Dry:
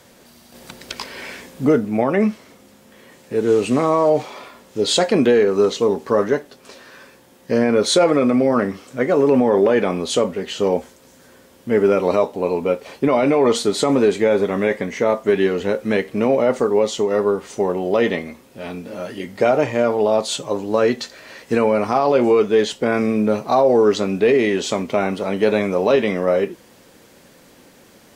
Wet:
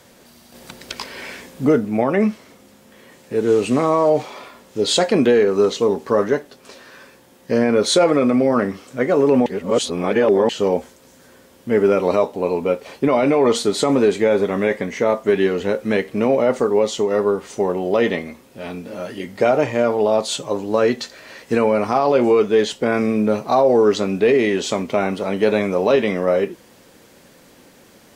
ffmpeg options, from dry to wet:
ffmpeg -i in.wav -filter_complex "[0:a]asplit=3[link_01][link_02][link_03];[link_01]atrim=end=9.462[link_04];[link_02]atrim=start=9.458:end=10.492,asetpts=PTS-STARTPTS,areverse[link_05];[link_03]atrim=start=10.488[link_06];[link_04][link_05]acrossfade=duration=0.004:curve1=hsin:curve2=hsin[link_07];[link_07][link_06]acrossfade=duration=0.004:curve1=hsin:curve2=hsin" out.wav

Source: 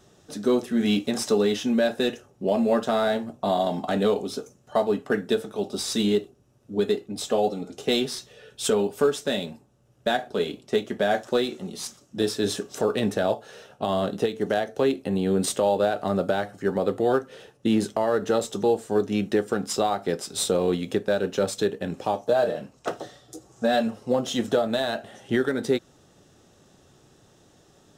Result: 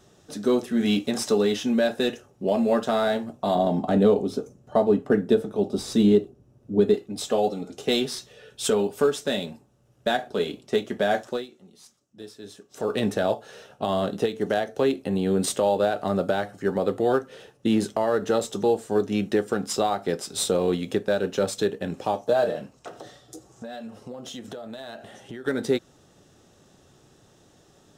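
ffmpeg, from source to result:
ffmpeg -i in.wav -filter_complex "[0:a]asettb=1/sr,asplit=3[link_01][link_02][link_03];[link_01]atrim=end=3.554[link_04];[link_02]atrim=start=3.55:end=6.94,asetpts=PTS-STARTPTS,afade=type=in:duration=0.004:curve=qsin,afade=type=out:start_time=3.386:duration=0.004:curve=qsin,tiltshelf=frequency=840:gain=6.5[link_05];[link_03]atrim=start=6.936[link_06];[link_04][link_05]acrossfade=duration=0.004:curve1=hsin:curve2=qsin[link_07];[link_07][link_06]acrossfade=duration=0.004:curve1=qsin:curve2=hsin,asettb=1/sr,asplit=3[link_08][link_09][link_10];[link_08]atrim=end=22.764[link_11];[link_09]atrim=start=22.76:end=25.46,asetpts=PTS-STARTPTS,afade=type=in:duration=0.004:curve=qsin,afade=type=out:start_time=2.696:duration=0.004:curve=qsin,acompressor=threshold=-35dB:ratio=6:attack=3.2:release=140:knee=1:detection=peak[link_12];[link_10]atrim=start=25.456[link_13];[link_11][link_12]acrossfade=duration=0.004:curve1=hsin:curve2=qsin[link_14];[link_14][link_13]acrossfade=duration=0.004:curve1=qsin:curve2=hsin,asplit=3[link_15][link_16][link_17];[link_15]atrim=end=11.47,asetpts=PTS-STARTPTS,afade=type=out:start_time=11.2:duration=0.27:silence=0.141254[link_18];[link_16]atrim=start=11.47:end=12.69,asetpts=PTS-STARTPTS,volume=-17dB[link_19];[link_17]atrim=start=12.69,asetpts=PTS-STARTPTS,afade=type=in:duration=0.27:silence=0.141254[link_20];[link_18][link_19][link_20]concat=n=3:v=0:a=1" out.wav

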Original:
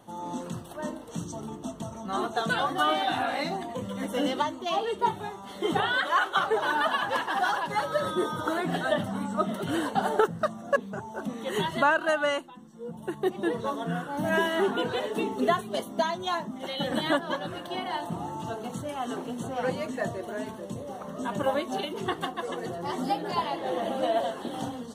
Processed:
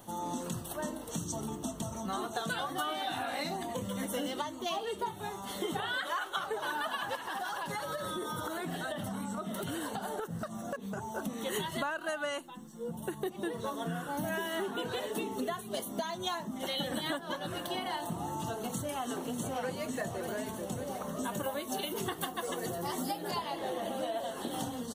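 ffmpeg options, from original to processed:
ffmpeg -i in.wav -filter_complex "[0:a]asettb=1/sr,asplit=3[link_01][link_02][link_03];[link_01]atrim=end=7.154[link_04];[link_02]atrim=start=7.15:end=11.09,asetpts=PTS-STARTPTS,afade=type=in:duration=0.004:curve=qsin,afade=type=out:start_time=3.936:duration=0.004:curve=qsin,acompressor=threshold=-33dB:ratio=6:attack=3.2:release=140:knee=1:detection=peak[link_05];[link_03]atrim=start=11.086[link_06];[link_04][link_05]acrossfade=duration=0.004:curve1=hsin:curve2=qsin[link_07];[link_07][link_06]acrossfade=duration=0.004:curve1=qsin:curve2=hsin,asplit=2[link_08][link_09];[link_09]afade=type=in:start_time=18.76:duration=0.01,afade=type=out:start_time=19.84:duration=0.01,aecho=0:1:570|1140|1710|2280|2850|3420|3990:0.266073|0.159644|0.0957861|0.0574717|0.034483|0.0206898|0.0124139[link_10];[link_08][link_10]amix=inputs=2:normalize=0,asettb=1/sr,asplit=3[link_11][link_12][link_13];[link_11]atrim=end=21.244[link_14];[link_12]atrim=start=21.24:end=23.31,asetpts=PTS-STARTPTS,afade=type=in:duration=0.004:curve=qsin,afade=type=out:start_time=2.066:duration=0.004:curve=qsin,highshelf=frequency=11000:gain=10.5[link_15];[link_13]atrim=start=23.306[link_16];[link_14][link_15]acrossfade=duration=0.004:curve1=hsin:curve2=qsin[link_17];[link_17][link_16]acrossfade=duration=0.004:curve1=qsin:curve2=hsin,lowshelf=frequency=60:gain=8.5,acompressor=threshold=-33dB:ratio=6,aemphasis=mode=production:type=50kf" out.wav

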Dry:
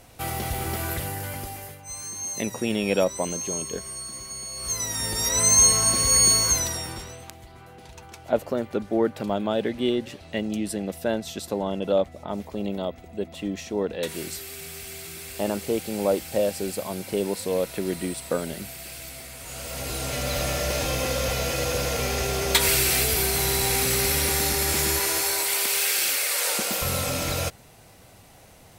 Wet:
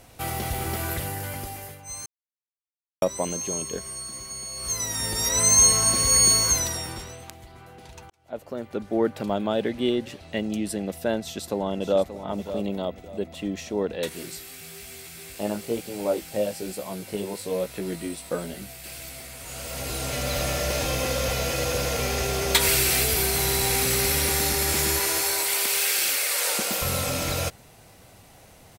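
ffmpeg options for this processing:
ffmpeg -i in.wav -filter_complex "[0:a]asplit=2[link_01][link_02];[link_02]afade=type=in:start_time=11.19:duration=0.01,afade=type=out:start_time=12.23:duration=0.01,aecho=0:1:580|1160|1740:0.281838|0.0845515|0.0253654[link_03];[link_01][link_03]amix=inputs=2:normalize=0,asettb=1/sr,asplit=3[link_04][link_05][link_06];[link_04]atrim=end=14.094[link_07];[link_05]atrim=start=14.09:end=18.84,asetpts=PTS-STARTPTS,afade=type=in:duration=0.004:curve=qsin,afade=type=out:start_time=4.746:duration=0.004:curve=qsin,flanger=delay=16:depth=3.1:speed=1.1[link_08];[link_06]atrim=start=18.836[link_09];[link_07][link_08]acrossfade=duration=0.004:curve1=hsin:curve2=qsin[link_10];[link_10][link_09]acrossfade=duration=0.004:curve1=qsin:curve2=hsin,asplit=4[link_11][link_12][link_13][link_14];[link_11]atrim=end=2.06,asetpts=PTS-STARTPTS,afade=type=out:start_time=2.056:duration=0.004:curve=hsin[link_15];[link_12]atrim=start=2.06:end=3.02,asetpts=PTS-STARTPTS,volume=0[link_16];[link_13]atrim=start=3.02:end=8.1,asetpts=PTS-STARTPTS,afade=type=in:duration=0.004:curve=hsin,afade=type=out:start_time=5.076:duration=0.004:curve=hsin[link_17];[link_14]atrim=start=8.1,asetpts=PTS-STARTPTS,afade=type=in:duration=0.97[link_18];[link_15][link_16][link_17][link_18]concat=n=4:v=0:a=1" out.wav

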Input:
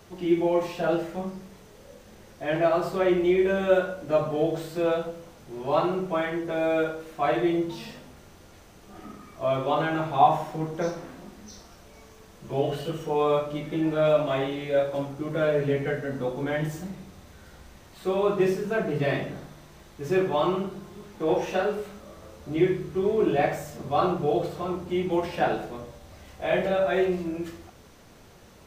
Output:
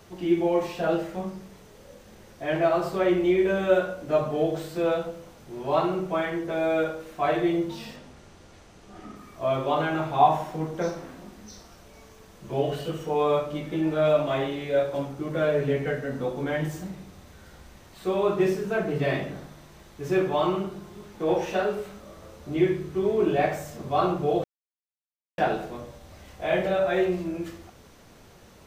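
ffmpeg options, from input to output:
ffmpeg -i in.wav -filter_complex "[0:a]asettb=1/sr,asplit=3[link_01][link_02][link_03];[link_01]atrim=end=7.964[link_04];[link_02]atrim=start=7.96:end=9.16,asetpts=PTS-STARTPTS,afade=type=in:duration=0.004:curve=qsin,afade=type=out:start_time=1.196:duration=0.004:curve=qsin,lowpass=8600[link_05];[link_03]atrim=start=9.156[link_06];[link_04][link_05]acrossfade=duration=0.004:curve1=hsin:curve2=qsin[link_07];[link_07][link_06]acrossfade=duration=0.004:curve1=qsin:curve2=hsin,asplit=3[link_08][link_09][link_10];[link_08]atrim=end=24.44,asetpts=PTS-STARTPTS,afade=type=out:start_time=24.436:duration=0.004:curve=hsin[link_11];[link_09]atrim=start=24.44:end=25.38,asetpts=PTS-STARTPTS,volume=0[link_12];[link_10]atrim=start=25.38,asetpts=PTS-STARTPTS,afade=type=in:duration=0.004:curve=hsin[link_13];[link_11][link_12][link_13]concat=n=3:v=0:a=1" out.wav

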